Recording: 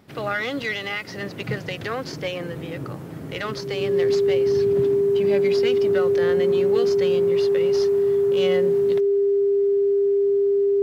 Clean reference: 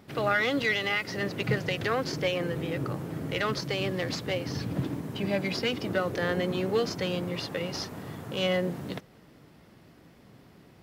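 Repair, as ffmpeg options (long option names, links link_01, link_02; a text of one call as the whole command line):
ffmpeg -i in.wav -af "bandreject=frequency=400:width=30" out.wav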